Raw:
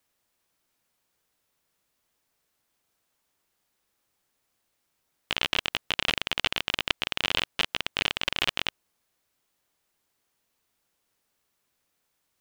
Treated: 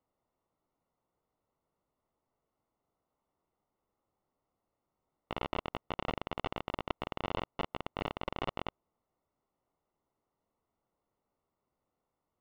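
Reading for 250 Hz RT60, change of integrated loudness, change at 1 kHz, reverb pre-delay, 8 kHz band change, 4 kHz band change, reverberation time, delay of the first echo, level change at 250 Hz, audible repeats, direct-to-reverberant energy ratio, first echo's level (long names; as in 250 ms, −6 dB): no reverb audible, −12.0 dB, −2.0 dB, no reverb audible, below −25 dB, −19.5 dB, no reverb audible, no echo audible, 0.0 dB, no echo audible, no reverb audible, no echo audible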